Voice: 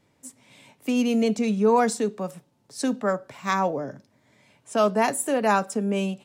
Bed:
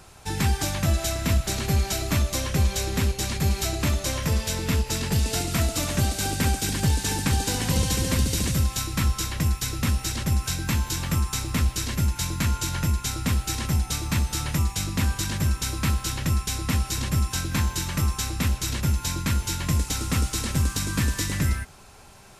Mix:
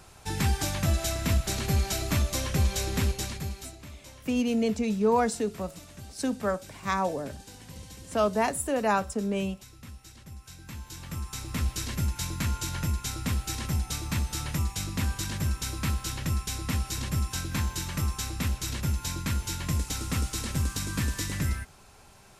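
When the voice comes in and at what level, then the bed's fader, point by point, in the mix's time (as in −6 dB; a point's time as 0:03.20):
3.40 s, −4.0 dB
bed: 0:03.14 −3 dB
0:03.85 −21.5 dB
0:10.36 −21.5 dB
0:11.70 −5 dB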